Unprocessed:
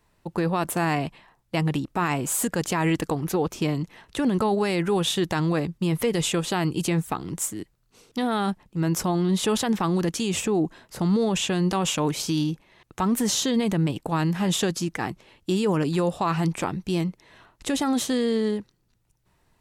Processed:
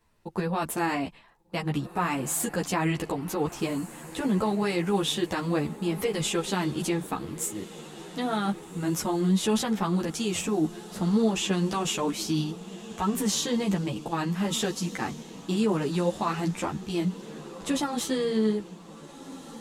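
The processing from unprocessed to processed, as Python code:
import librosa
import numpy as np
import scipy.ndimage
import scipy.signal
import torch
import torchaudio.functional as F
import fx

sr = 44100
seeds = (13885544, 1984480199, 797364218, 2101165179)

y = fx.echo_diffused(x, sr, ms=1546, feedback_pct=51, wet_db=-15.5)
y = fx.ensemble(y, sr)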